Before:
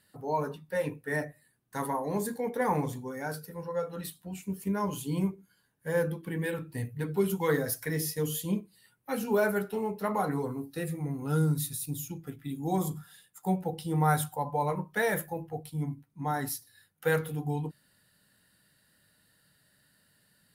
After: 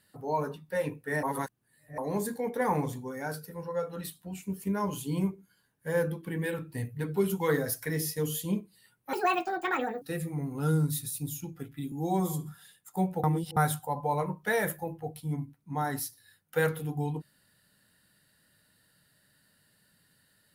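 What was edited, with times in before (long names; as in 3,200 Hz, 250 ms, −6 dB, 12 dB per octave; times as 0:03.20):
0:01.23–0:01.98: reverse
0:09.13–0:10.69: play speed 176%
0:12.59–0:12.95: time-stretch 1.5×
0:13.73–0:14.06: reverse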